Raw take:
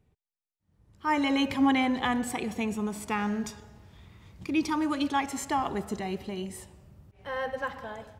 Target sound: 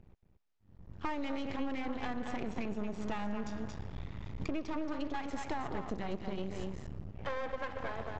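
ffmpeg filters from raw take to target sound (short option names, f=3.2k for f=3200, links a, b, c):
-filter_complex "[0:a]asplit=2[a][b];[b]volume=26.5dB,asoftclip=hard,volume=-26.5dB,volume=-5dB[c];[a][c]amix=inputs=2:normalize=0,lowshelf=f=110:g=7,aecho=1:1:227:0.376,aresample=16000,aeval=exprs='max(val(0),0)':c=same,aresample=44100,acompressor=threshold=-37dB:ratio=10,lowpass=f=2.2k:p=1,volume=5.5dB"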